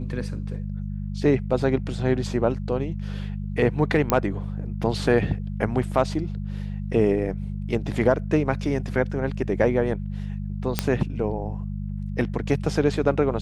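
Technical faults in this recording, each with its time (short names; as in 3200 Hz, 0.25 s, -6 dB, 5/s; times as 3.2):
hum 50 Hz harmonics 4 -30 dBFS
4.1 pop -6 dBFS
10.79 pop -4 dBFS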